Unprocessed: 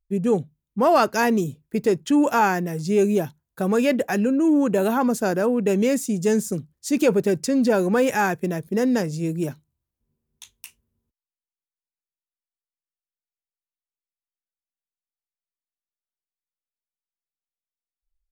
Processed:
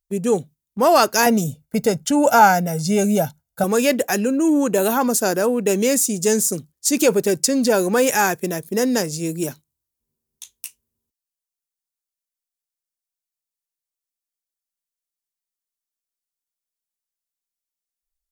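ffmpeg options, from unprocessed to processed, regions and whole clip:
-filter_complex "[0:a]asettb=1/sr,asplit=3[s0][s1][s2];[s0]atrim=end=1.264[s3];[s1]atrim=start=1.26:end=3.64,asetpts=PTS-STARTPTS,afade=t=in:d=0.004:c=qsin,afade=t=out:st=2.376:d=0.004:c=qsin,tiltshelf=f=1300:g=4,aecho=1:1:1.4:0.78,atrim=end_sample=104958[s4];[s2]atrim=start=3.636[s5];[s3][s4]acrossfade=d=0.004:c1=hsin:c2=qsin[s6];[s6][s5]acrossfade=d=0.004:c1=qsin:c2=hsin,agate=range=0.501:threshold=0.01:ratio=16:detection=peak,bass=f=250:g=-6,treble=f=4000:g=11,volume=1.41"

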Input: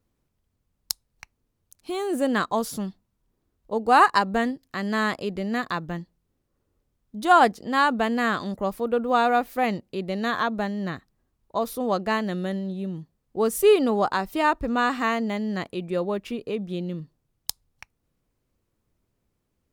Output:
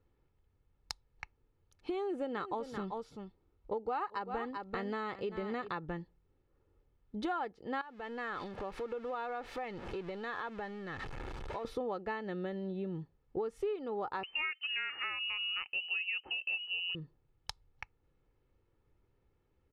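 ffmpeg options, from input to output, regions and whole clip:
-filter_complex "[0:a]asettb=1/sr,asplit=3[s0][s1][s2];[s0]atrim=end=1.974[s3];[s1]atrim=start=1.97:end=5.73,asetpts=PTS-STARTPTS,afade=t=in:d=0.004:c=qsin,afade=t=out:st=3.756:d=0.004:c=qsin,bandreject=f=1700:w=11,aecho=1:1:389:0.224,atrim=end_sample=165816[s4];[s2]atrim=start=5.726[s5];[s3][s4]acrossfade=d=0.004:c1=hsin:c2=qsin[s6];[s6][s5]acrossfade=d=0.004:c1=qsin:c2=hsin,asettb=1/sr,asplit=3[s7][s8][s9];[s7]atrim=end=7.814[s10];[s8]atrim=start=7.81:end=11.65,asetpts=PTS-STARTPTS,afade=t=in:d=0.004:c=qsin,afade=t=out:st=3.836:d=0.004:c=qsin,aeval=exprs='val(0)+0.5*0.0237*sgn(val(0))':c=same,acompressor=threshold=0.0178:ratio=4:attack=3.2:release=140:knee=1:detection=peak,lowshelf=f=490:g=-6[s11];[s9]atrim=start=11.646[s12];[s10][s11]acrossfade=d=0.004:c1=hsin:c2=qsin[s13];[s13][s12]acrossfade=d=0.004:c1=qsin:c2=hsin,asettb=1/sr,asplit=3[s14][s15][s16];[s14]atrim=end=14.234[s17];[s15]atrim=start=14.23:end=16.95,asetpts=PTS-STARTPTS,afade=t=in:d=0.004:c=qsin,afade=t=out:st=2.716:d=0.004:c=qsin,equalizer=f=290:w=0.61:g=8,lowpass=f=2600:t=q:w=0.5098,lowpass=f=2600:t=q:w=0.6013,lowpass=f=2600:t=q:w=0.9,lowpass=f=2600:t=q:w=2.563,afreqshift=-3100[s18];[s16]atrim=start=16.946[s19];[s17][s18]acrossfade=d=0.004:c1=hsin:c2=qsin[s20];[s20][s19]acrossfade=d=0.004:c1=qsin:c2=hsin,lowpass=2700,aecho=1:1:2.3:0.48,acompressor=threshold=0.02:ratio=10"

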